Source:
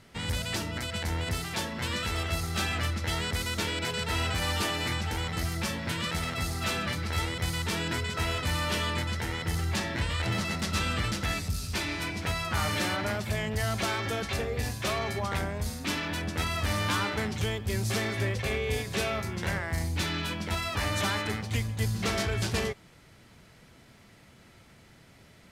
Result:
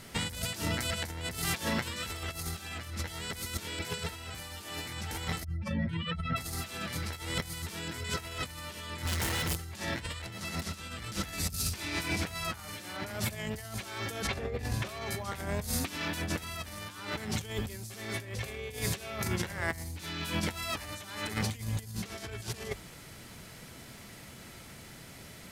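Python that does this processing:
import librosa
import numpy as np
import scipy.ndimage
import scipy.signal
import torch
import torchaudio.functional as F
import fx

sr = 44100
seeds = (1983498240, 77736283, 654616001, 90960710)

y = fx.spec_expand(x, sr, power=2.4, at=(5.43, 6.36), fade=0.02)
y = fx.clip_hard(y, sr, threshold_db=-36.5, at=(9.04, 9.55), fade=0.02)
y = fx.lowpass(y, sr, hz=2000.0, slope=6, at=(14.27, 14.89))
y = fx.high_shelf(y, sr, hz=6900.0, db=11.5)
y = fx.hum_notches(y, sr, base_hz=50, count=2)
y = fx.over_compress(y, sr, threshold_db=-35.0, ratio=-0.5)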